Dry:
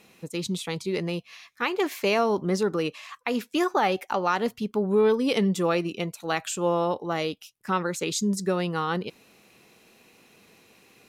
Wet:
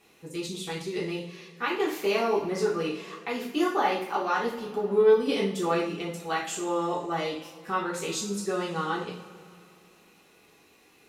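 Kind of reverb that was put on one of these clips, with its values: two-slope reverb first 0.46 s, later 2.9 s, from -20 dB, DRR -6 dB; trim -9 dB

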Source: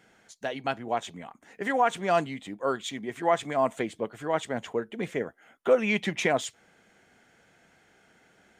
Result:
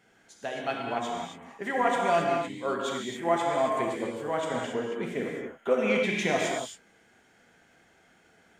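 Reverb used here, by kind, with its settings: gated-style reverb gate 300 ms flat, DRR -2 dB; trim -4 dB

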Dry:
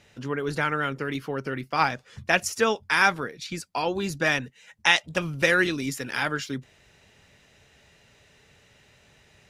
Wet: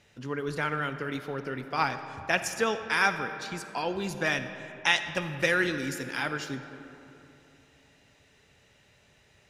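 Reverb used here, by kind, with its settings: algorithmic reverb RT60 3.1 s, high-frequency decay 0.5×, pre-delay 10 ms, DRR 9 dB; trim -4.5 dB

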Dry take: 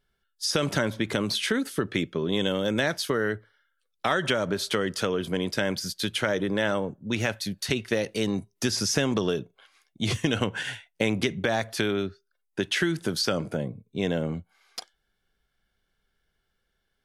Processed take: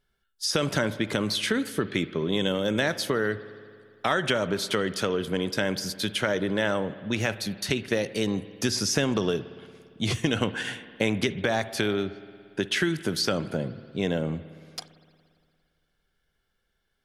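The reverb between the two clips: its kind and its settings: spring tank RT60 2.2 s, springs 57 ms, chirp 25 ms, DRR 14.5 dB

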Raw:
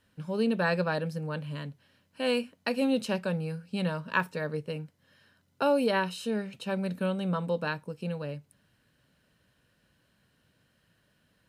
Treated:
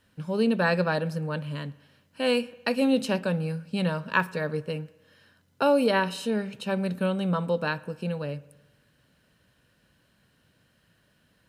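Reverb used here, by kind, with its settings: spring tank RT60 1.1 s, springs 56 ms, chirp 80 ms, DRR 19.5 dB; trim +3.5 dB

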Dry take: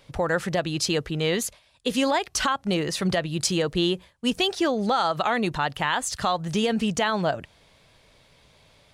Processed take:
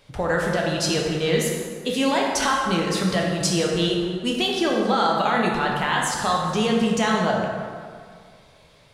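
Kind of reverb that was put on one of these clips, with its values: plate-style reverb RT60 2 s, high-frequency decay 0.55×, DRR -2 dB; trim -1 dB

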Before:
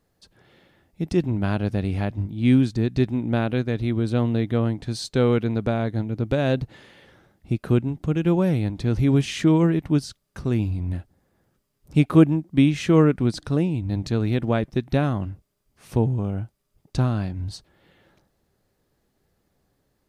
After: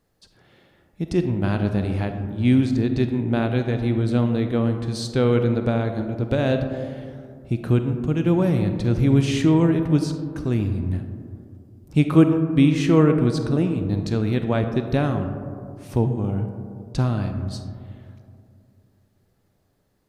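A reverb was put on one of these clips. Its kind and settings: algorithmic reverb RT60 2.4 s, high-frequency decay 0.25×, pre-delay 5 ms, DRR 6.5 dB

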